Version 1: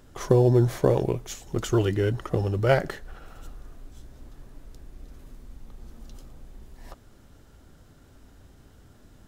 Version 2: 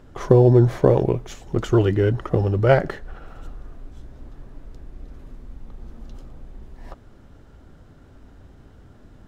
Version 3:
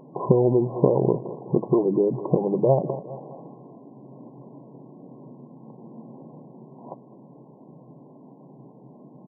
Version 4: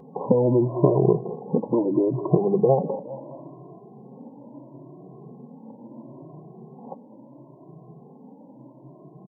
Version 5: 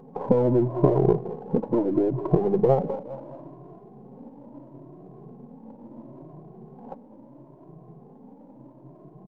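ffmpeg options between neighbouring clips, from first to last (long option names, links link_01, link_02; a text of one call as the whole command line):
ffmpeg -i in.wav -af "lowpass=frequency=1900:poles=1,volume=5.5dB" out.wav
ffmpeg -i in.wav -af "aecho=1:1:205|410|615:0.0891|0.0383|0.0165,acompressor=threshold=-20dB:ratio=6,afftfilt=real='re*between(b*sr/4096,120,1100)':imag='im*between(b*sr/4096,120,1100)':win_size=4096:overlap=0.75,volume=5.5dB" out.wav
ffmpeg -i in.wav -filter_complex "[0:a]asplit=2[link_01][link_02];[link_02]adelay=2.1,afreqshift=0.74[link_03];[link_01][link_03]amix=inputs=2:normalize=1,volume=4dB" out.wav
ffmpeg -i in.wav -af "aeval=exprs='if(lt(val(0),0),0.708*val(0),val(0))':channel_layout=same" out.wav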